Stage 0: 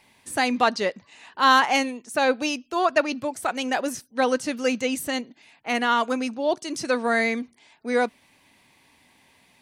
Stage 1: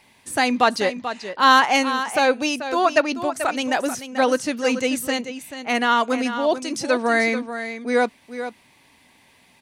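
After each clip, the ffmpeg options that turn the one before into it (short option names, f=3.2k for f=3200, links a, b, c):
-af "aecho=1:1:437:0.299,volume=3dB"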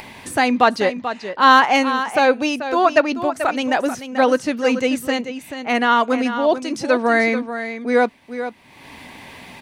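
-af "equalizer=f=9.6k:w=0.4:g=-9,acompressor=mode=upward:threshold=-29dB:ratio=2.5,volume=3.5dB"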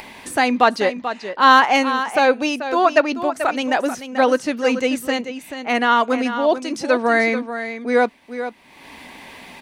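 -af "equalizer=f=110:w=1.6:g=-11"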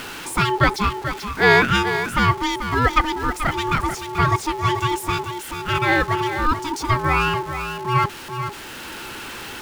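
-af "aeval=exprs='val(0)+0.5*0.0398*sgn(val(0))':c=same,aeval=exprs='val(0)*sin(2*PI*620*n/s)':c=same"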